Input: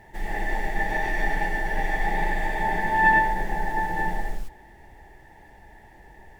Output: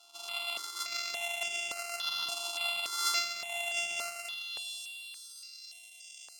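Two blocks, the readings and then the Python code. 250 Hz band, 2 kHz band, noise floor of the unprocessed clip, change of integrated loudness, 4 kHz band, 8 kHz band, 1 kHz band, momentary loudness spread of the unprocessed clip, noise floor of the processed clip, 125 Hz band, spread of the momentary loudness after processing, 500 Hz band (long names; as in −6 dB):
below −25 dB, −12.0 dB, −51 dBFS, −8.5 dB, +13.0 dB, can't be measured, −17.5 dB, 12 LU, −53 dBFS, below −35 dB, 15 LU, −12.0 dB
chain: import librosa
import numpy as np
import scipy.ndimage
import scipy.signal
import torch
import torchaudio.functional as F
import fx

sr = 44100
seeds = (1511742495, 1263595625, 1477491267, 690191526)

p1 = np.r_[np.sort(x[:len(x) // 64 * 64].reshape(-1, 64), axis=1).ravel(), x[len(x) // 64 * 64:]]
p2 = fx.fixed_phaser(p1, sr, hz=340.0, stages=8)
p3 = p2 + fx.echo_diffused(p2, sr, ms=516, feedback_pct=47, wet_db=-15.0, dry=0)
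p4 = fx.filter_sweep_bandpass(p3, sr, from_hz=1500.0, to_hz=4300.0, start_s=4.16, end_s=4.86, q=1.7)
p5 = fx.highpass(p4, sr, hz=120.0, slope=6)
p6 = fx.tilt_shelf(p5, sr, db=-7.5, hz=1500.0)
p7 = fx.rider(p6, sr, range_db=4, speed_s=0.5)
p8 = p6 + (p7 * 10.0 ** (-2.5 / 20.0))
p9 = fx.high_shelf_res(p8, sr, hz=2200.0, db=7.5, q=1.5)
p10 = fx.phaser_held(p9, sr, hz=3.5, low_hz=520.0, high_hz=4200.0)
y = p10 * 10.0 ** (-2.5 / 20.0)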